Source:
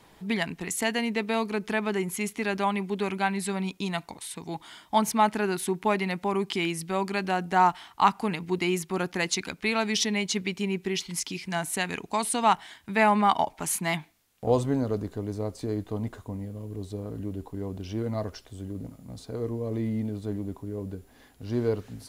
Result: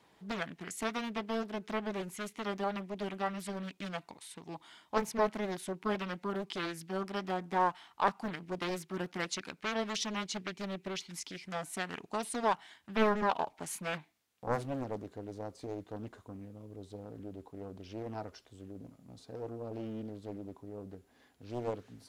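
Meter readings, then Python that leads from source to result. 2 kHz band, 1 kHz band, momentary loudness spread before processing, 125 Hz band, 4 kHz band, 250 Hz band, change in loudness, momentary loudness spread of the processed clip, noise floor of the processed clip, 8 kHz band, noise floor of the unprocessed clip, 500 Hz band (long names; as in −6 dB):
−9.5 dB, −9.5 dB, 13 LU, −11.5 dB, −9.5 dB, −9.5 dB, −9.0 dB, 15 LU, −68 dBFS, −11.5 dB, −58 dBFS, −7.5 dB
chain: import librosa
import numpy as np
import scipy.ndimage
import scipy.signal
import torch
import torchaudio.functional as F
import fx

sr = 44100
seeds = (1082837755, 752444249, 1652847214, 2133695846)

y = fx.highpass(x, sr, hz=150.0, slope=6)
y = fx.peak_eq(y, sr, hz=13000.0, db=-5.0, octaves=1.1)
y = fx.doppler_dist(y, sr, depth_ms=0.91)
y = F.gain(torch.from_numpy(y), -8.5).numpy()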